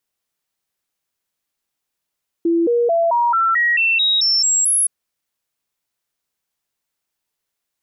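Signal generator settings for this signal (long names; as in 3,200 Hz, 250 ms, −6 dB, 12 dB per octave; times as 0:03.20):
stepped sweep 336 Hz up, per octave 2, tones 11, 0.22 s, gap 0.00 s −13 dBFS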